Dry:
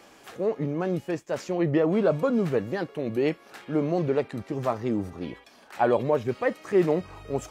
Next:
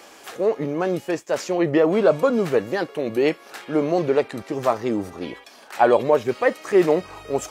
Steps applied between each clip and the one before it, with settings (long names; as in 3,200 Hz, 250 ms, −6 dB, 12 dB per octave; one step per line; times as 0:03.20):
bass and treble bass −10 dB, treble +3 dB
level +7 dB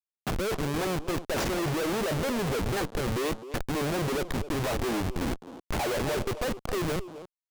fade-out on the ending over 1.68 s
comparator with hysteresis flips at −30.5 dBFS
far-end echo of a speakerphone 260 ms, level −6 dB
level −6 dB